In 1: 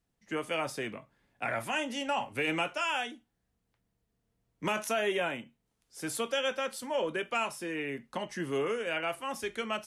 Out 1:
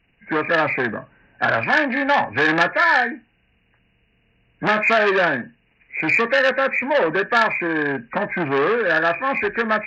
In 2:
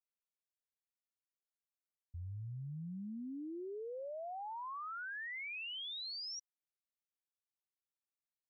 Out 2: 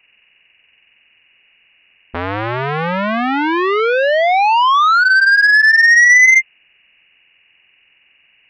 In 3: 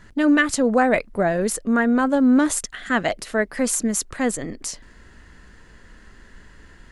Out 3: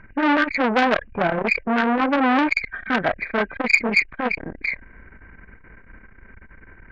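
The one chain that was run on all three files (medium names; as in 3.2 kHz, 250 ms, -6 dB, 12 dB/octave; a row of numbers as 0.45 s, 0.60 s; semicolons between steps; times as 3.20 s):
knee-point frequency compression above 1.5 kHz 4:1; transformer saturation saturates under 1.9 kHz; peak normalisation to -2 dBFS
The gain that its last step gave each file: +15.5 dB, +34.0 dB, +3.5 dB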